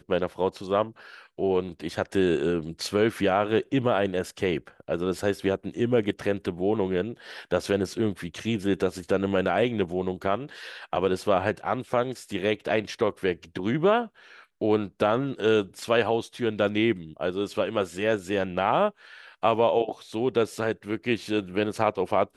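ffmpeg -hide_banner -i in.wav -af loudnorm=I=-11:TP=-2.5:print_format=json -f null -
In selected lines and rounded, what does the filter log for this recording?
"input_i" : "-26.6",
"input_tp" : "-7.6",
"input_lra" : "1.7",
"input_thresh" : "-36.7",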